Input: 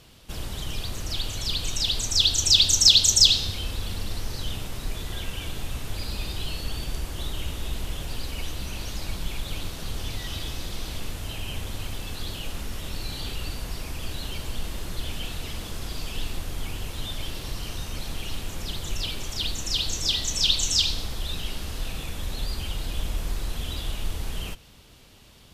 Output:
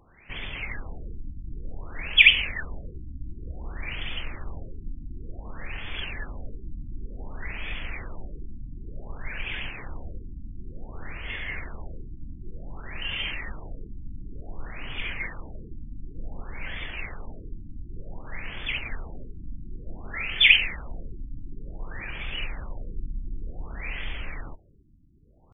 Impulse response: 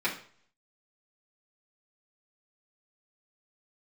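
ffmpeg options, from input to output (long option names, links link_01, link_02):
-af "asetrate=30296,aresample=44100,atempo=1.45565,crystalizer=i=8.5:c=0,afftfilt=real='re*lt(b*sr/1024,320*pow(3600/320,0.5+0.5*sin(2*PI*0.55*pts/sr)))':imag='im*lt(b*sr/1024,320*pow(3600/320,0.5+0.5*sin(2*PI*0.55*pts/sr)))':win_size=1024:overlap=0.75,volume=-3.5dB"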